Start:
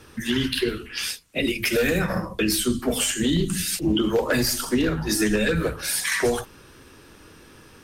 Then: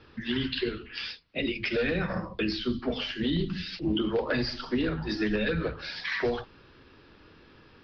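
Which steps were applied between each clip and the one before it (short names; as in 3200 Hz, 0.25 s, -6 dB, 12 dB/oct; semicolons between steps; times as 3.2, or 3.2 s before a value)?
steep low-pass 5000 Hz 72 dB/oct; gain -6 dB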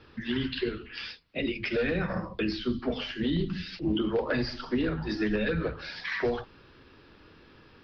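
dynamic EQ 4100 Hz, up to -4 dB, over -46 dBFS, Q 0.87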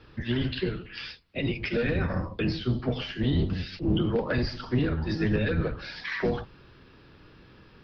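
octaver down 1 oct, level +2 dB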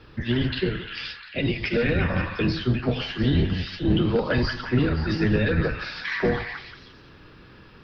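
delay with a stepping band-pass 0.175 s, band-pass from 1300 Hz, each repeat 0.7 oct, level -2.5 dB; gain +4 dB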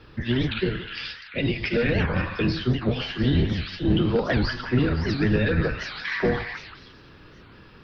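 record warp 78 rpm, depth 250 cents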